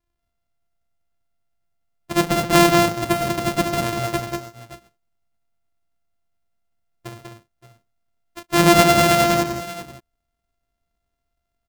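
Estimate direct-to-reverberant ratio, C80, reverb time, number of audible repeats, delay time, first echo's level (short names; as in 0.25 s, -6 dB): none, none, none, 3, 0.132 s, -14.5 dB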